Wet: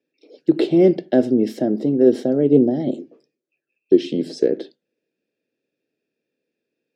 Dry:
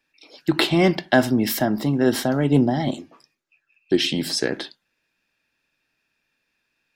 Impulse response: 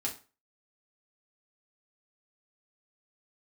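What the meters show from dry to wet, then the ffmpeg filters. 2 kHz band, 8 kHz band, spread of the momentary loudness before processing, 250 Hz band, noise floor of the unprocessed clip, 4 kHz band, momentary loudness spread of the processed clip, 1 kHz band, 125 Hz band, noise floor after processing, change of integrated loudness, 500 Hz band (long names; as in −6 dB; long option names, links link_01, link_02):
below −10 dB, below −15 dB, 10 LU, +3.5 dB, −75 dBFS, −13.0 dB, 10 LU, −9.0 dB, −4.0 dB, −82 dBFS, +2.5 dB, +6.0 dB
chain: -af "highpass=200,lowpass=7400,lowshelf=frequency=690:width_type=q:width=3:gain=13.5,volume=-12dB"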